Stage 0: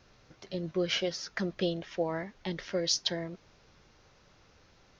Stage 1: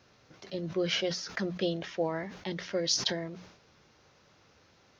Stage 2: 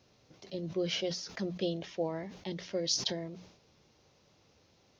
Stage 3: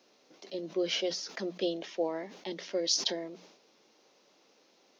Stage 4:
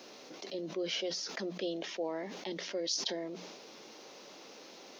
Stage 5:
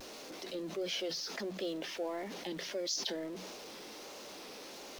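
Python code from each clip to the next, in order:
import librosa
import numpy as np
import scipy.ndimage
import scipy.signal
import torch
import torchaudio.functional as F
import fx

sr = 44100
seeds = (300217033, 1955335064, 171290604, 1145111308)

y1 = scipy.signal.sosfilt(scipy.signal.butter(2, 83.0, 'highpass', fs=sr, output='sos'), x)
y1 = fx.hum_notches(y1, sr, base_hz=60, count=3)
y1 = fx.sustainer(y1, sr, db_per_s=78.0)
y2 = fx.peak_eq(y1, sr, hz=1500.0, db=-9.0, octaves=1.1)
y2 = F.gain(torch.from_numpy(y2), -2.0).numpy()
y3 = scipy.signal.sosfilt(scipy.signal.butter(4, 250.0, 'highpass', fs=sr, output='sos'), y2)
y3 = F.gain(torch.from_numpy(y3), 2.5).numpy()
y4 = fx.env_flatten(y3, sr, amount_pct=50)
y4 = F.gain(torch.from_numpy(y4), -6.5).numpy()
y5 = y4 + 0.5 * 10.0 ** (-45.0 / 20.0) * np.sign(y4)
y5 = fx.vibrato(y5, sr, rate_hz=1.5, depth_cents=78.0)
y5 = fx.hum_notches(y5, sr, base_hz=50, count=3)
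y5 = F.gain(torch.from_numpy(y5), -2.5).numpy()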